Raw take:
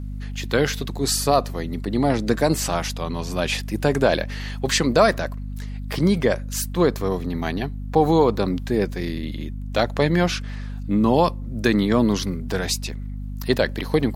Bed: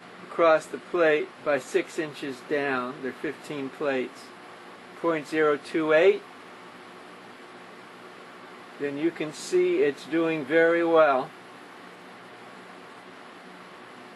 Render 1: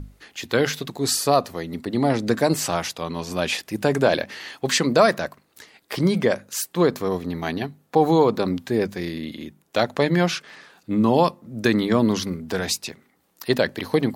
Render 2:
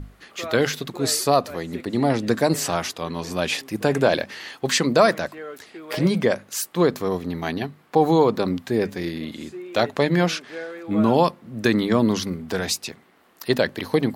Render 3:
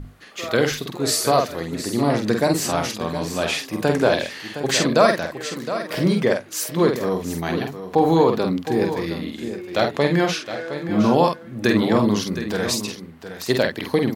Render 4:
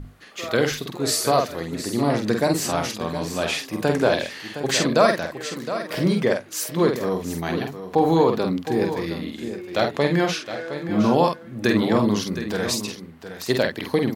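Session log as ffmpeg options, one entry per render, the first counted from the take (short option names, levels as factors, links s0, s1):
-af "bandreject=f=50:t=h:w=6,bandreject=f=100:t=h:w=6,bandreject=f=150:t=h:w=6,bandreject=f=200:t=h:w=6,bandreject=f=250:t=h:w=6"
-filter_complex "[1:a]volume=0.211[s0];[0:a][s0]amix=inputs=2:normalize=0"
-filter_complex "[0:a]asplit=2[s0][s1];[s1]adelay=48,volume=0.562[s2];[s0][s2]amix=inputs=2:normalize=0,asplit=2[s3][s4];[s4]aecho=0:1:714:0.282[s5];[s3][s5]amix=inputs=2:normalize=0"
-af "volume=0.841"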